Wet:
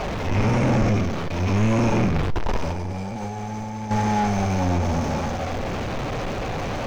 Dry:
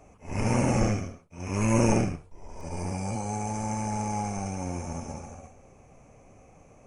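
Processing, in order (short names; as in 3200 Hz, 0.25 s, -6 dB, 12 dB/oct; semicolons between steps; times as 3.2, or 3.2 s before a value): zero-crossing step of -30.5 dBFS; high shelf 5500 Hz +11 dB; in parallel at +2 dB: limiter -16.5 dBFS, peak gain reduction 9.5 dB; 2.15–3.91 on the sum: negative-ratio compressor -25 dBFS, ratio -0.5; flange 0.95 Hz, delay 4.6 ms, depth 6.4 ms, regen -66%; soft clip -22 dBFS, distortion -11 dB; air absorption 230 m; on a send at -21.5 dB: reverb RT60 0.65 s, pre-delay 30 ms; on the sum: gain +7 dB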